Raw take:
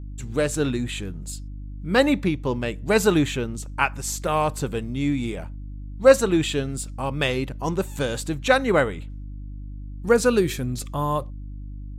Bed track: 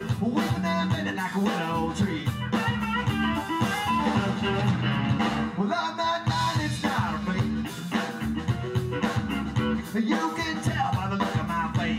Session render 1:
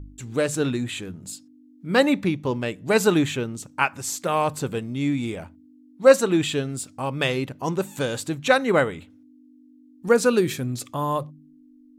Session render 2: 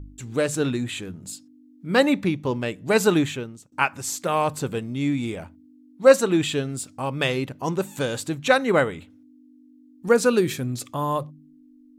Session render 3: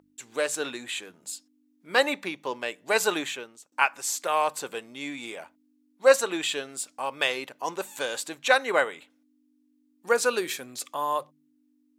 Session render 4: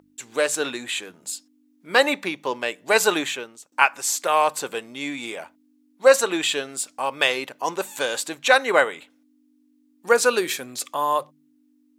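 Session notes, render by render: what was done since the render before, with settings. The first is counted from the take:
hum removal 50 Hz, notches 4
0:03.17–0:03.72: fade out linear, to −23 dB
high-pass filter 620 Hz 12 dB per octave; notch filter 1,300 Hz, Q 19
level +5.5 dB; brickwall limiter −2 dBFS, peak gain reduction 3 dB

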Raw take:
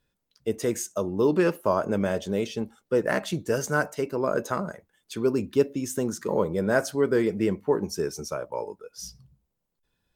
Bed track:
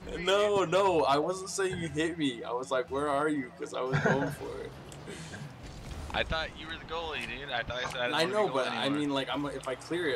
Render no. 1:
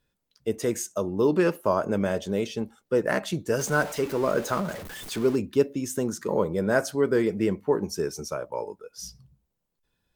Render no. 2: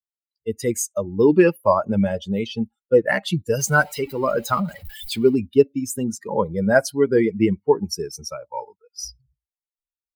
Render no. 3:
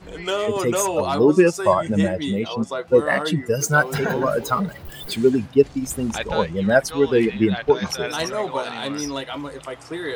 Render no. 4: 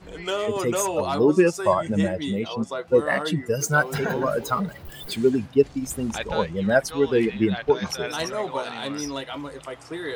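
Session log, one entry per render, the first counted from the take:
0:03.59–0:05.36: converter with a step at zero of −33.5 dBFS
spectral dynamics exaggerated over time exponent 2; automatic gain control gain up to 11.5 dB
mix in bed track +2.5 dB
level −3 dB

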